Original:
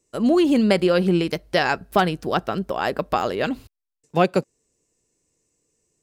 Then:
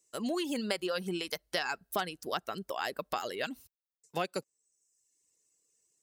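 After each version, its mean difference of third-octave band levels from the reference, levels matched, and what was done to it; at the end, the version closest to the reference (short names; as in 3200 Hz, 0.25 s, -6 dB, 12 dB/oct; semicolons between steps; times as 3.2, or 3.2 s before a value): 6.0 dB: reverb removal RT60 0.79 s; tilt +3 dB/oct; notch 2400 Hz, Q 17; compressor 2.5:1, threshold -23 dBFS, peak gain reduction 7 dB; gain -8 dB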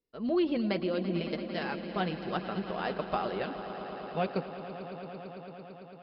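8.5 dB: random-step tremolo; flange 0.7 Hz, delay 4.1 ms, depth 2 ms, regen -37%; steep low-pass 5000 Hz 72 dB/oct; on a send: swelling echo 0.112 s, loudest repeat 5, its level -15 dB; on the sum: gain -6 dB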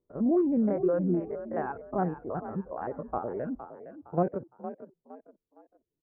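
11.0 dB: stepped spectrum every 50 ms; reverb removal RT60 1.6 s; Gaussian blur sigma 7.4 samples; on a send: frequency-shifting echo 0.462 s, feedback 33%, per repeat +41 Hz, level -12 dB; on the sum: gain -5 dB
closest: first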